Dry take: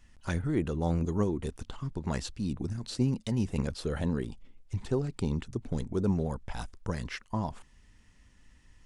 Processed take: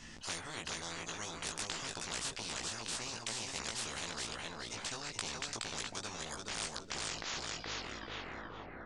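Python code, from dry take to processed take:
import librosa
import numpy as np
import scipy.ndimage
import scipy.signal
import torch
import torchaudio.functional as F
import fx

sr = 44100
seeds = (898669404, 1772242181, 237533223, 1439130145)

y = fx.tape_stop_end(x, sr, length_s=2.45)
y = fx.bass_treble(y, sr, bass_db=2, treble_db=15)
y = fx.rider(y, sr, range_db=10, speed_s=0.5)
y = fx.air_absorb(y, sr, metres=140.0)
y = fx.doubler(y, sr, ms=18.0, db=-2.5)
y = fx.echo_feedback(y, sr, ms=421, feedback_pct=21, wet_db=-7.0)
y = fx.spectral_comp(y, sr, ratio=10.0)
y = y * 10.0 ** (-4.5 / 20.0)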